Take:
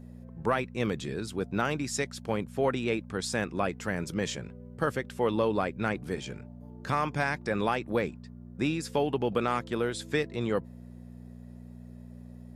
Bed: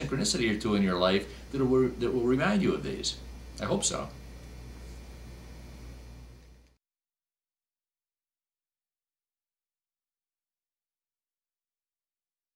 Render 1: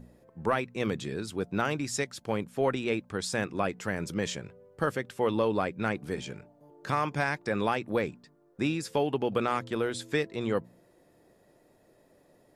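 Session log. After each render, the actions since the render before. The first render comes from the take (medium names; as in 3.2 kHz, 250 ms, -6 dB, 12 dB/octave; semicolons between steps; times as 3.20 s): de-hum 60 Hz, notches 4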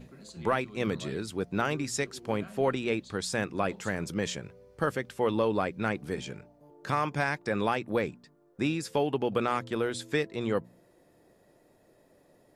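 add bed -21.5 dB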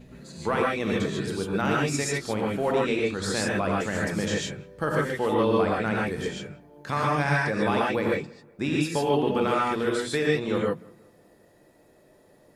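filtered feedback delay 184 ms, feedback 45%, low-pass 2.3 kHz, level -24 dB; gated-style reverb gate 170 ms rising, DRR -3.5 dB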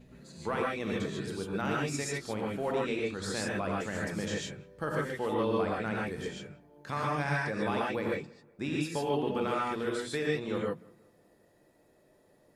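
trim -7 dB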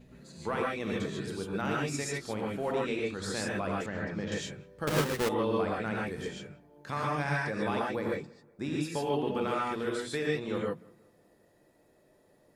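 3.86–4.32 s: distance through air 230 m; 4.87–5.29 s: square wave that keeps the level; 7.79–8.88 s: peaking EQ 2.7 kHz -6 dB 0.58 oct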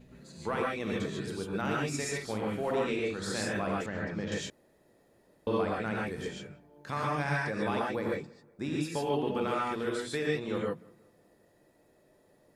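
1.95–3.77 s: doubling 47 ms -7 dB; 4.50–5.47 s: room tone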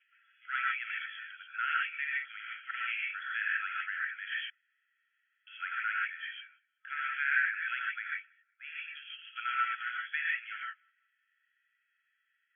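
FFT band-pass 1.3–3.4 kHz; dynamic bell 1.7 kHz, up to +7 dB, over -52 dBFS, Q 0.81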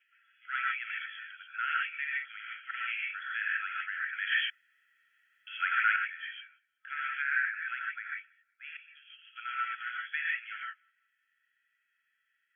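4.13–5.96 s: gain +7.5 dB; 7.22–8.17 s: low-pass 2.2 kHz; 8.77–10.06 s: fade in, from -14.5 dB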